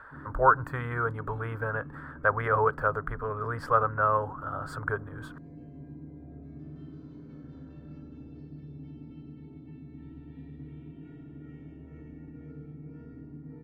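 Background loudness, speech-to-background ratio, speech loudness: -46.0 LUFS, 17.5 dB, -28.5 LUFS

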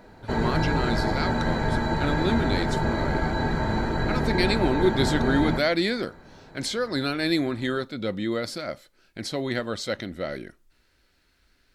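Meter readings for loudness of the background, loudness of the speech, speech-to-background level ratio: -26.5 LUFS, -28.0 LUFS, -1.5 dB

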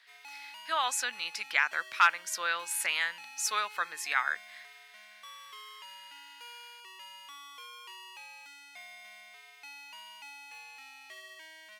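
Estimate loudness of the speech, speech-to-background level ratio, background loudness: -30.0 LUFS, 17.5 dB, -47.5 LUFS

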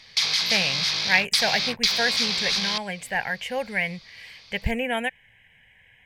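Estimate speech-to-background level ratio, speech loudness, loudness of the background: -5.0 dB, -27.0 LUFS, -22.0 LUFS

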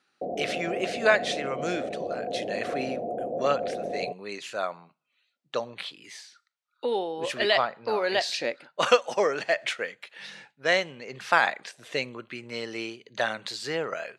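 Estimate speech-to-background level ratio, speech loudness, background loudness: 4.5 dB, -28.5 LUFS, -33.0 LUFS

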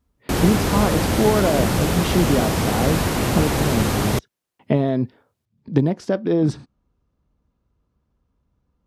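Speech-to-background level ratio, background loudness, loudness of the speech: -1.0 dB, -21.5 LUFS, -22.5 LUFS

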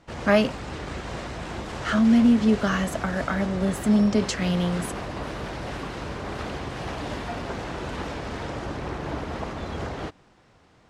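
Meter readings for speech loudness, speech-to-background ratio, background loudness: -22.5 LUFS, 11.0 dB, -33.5 LUFS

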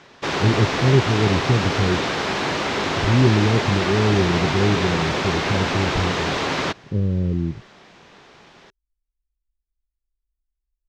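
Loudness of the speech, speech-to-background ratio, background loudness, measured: -22.0 LUFS, 0.5 dB, -22.5 LUFS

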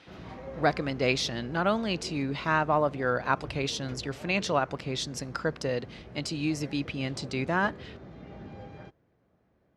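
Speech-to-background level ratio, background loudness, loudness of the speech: 16.0 dB, -45.5 LUFS, -29.5 LUFS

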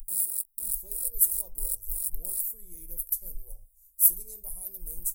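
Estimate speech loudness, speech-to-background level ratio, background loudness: -28.0 LUFS, 2.5 dB, -30.5 LUFS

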